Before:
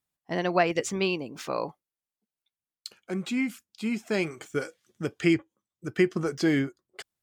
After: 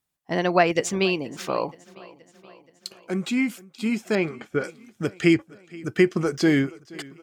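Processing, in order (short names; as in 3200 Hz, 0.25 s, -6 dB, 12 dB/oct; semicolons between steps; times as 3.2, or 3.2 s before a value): 4.15–4.64 LPF 2500 Hz 12 dB/oct; on a send: feedback echo 0.475 s, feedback 60%, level -22 dB; on the sum: gain +4.5 dB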